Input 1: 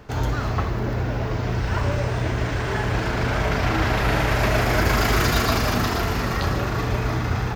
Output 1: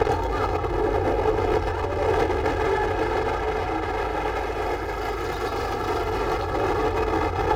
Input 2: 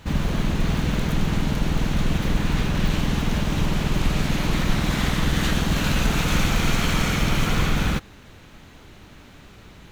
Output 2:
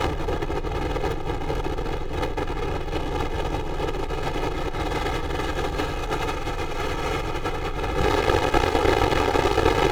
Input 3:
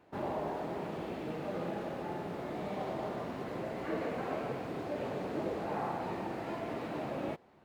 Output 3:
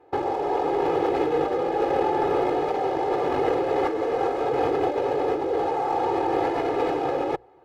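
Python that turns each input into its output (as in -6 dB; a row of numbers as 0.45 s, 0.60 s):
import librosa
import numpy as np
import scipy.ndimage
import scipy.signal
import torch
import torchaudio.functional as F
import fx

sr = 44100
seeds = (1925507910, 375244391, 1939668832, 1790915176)

p1 = fx.fuzz(x, sr, gain_db=40.0, gate_db=-43.0)
p2 = x + (p1 * 10.0 ** (-11.5 / 20.0))
p3 = fx.high_shelf(p2, sr, hz=6200.0, db=-8.5)
p4 = fx.hum_notches(p3, sr, base_hz=60, count=3)
p5 = fx.over_compress(p4, sr, threshold_db=-30.0, ratio=-1.0)
p6 = fx.peak_eq(p5, sr, hz=590.0, db=11.5, octaves=2.1)
p7 = p6 + 0.99 * np.pad(p6, (int(2.4 * sr / 1000.0), 0))[:len(p6)]
y = p7 * 10.0 ** (-24 / 20.0) / np.sqrt(np.mean(np.square(p7)))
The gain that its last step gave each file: -3.5 dB, -1.0 dB, -5.5 dB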